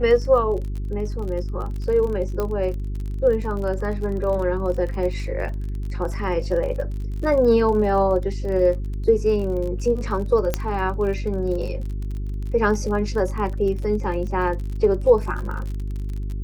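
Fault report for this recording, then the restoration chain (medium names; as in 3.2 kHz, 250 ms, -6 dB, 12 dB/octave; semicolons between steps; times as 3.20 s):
crackle 35 per s -30 dBFS
hum 50 Hz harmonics 8 -27 dBFS
2.40 s: pop -13 dBFS
10.54 s: pop -7 dBFS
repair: de-click; de-hum 50 Hz, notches 8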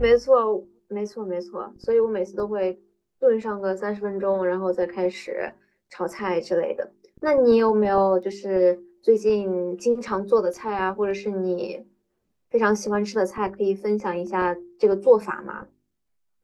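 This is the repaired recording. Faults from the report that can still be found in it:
2.40 s: pop
10.54 s: pop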